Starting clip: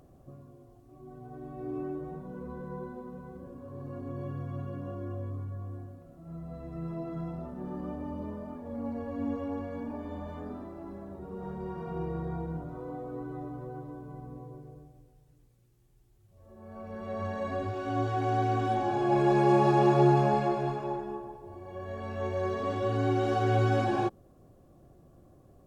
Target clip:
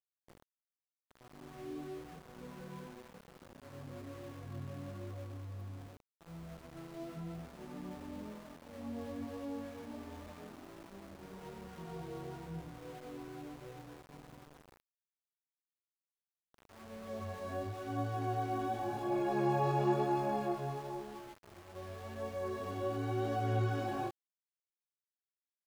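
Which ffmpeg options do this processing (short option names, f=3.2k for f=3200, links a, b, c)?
-af "flanger=delay=17.5:depth=4:speed=0.94,aeval=exprs='val(0)*gte(abs(val(0)),0.00596)':c=same,volume=-5.5dB"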